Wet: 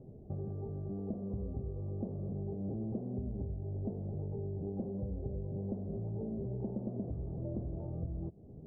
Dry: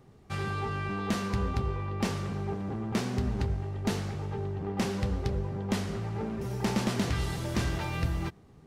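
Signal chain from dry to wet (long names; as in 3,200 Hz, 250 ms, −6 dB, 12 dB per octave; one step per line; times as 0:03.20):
downward compressor 6 to 1, threshold −41 dBFS, peak gain reduction 16 dB
Chebyshev low-pass filter 640 Hz, order 4
level +5.5 dB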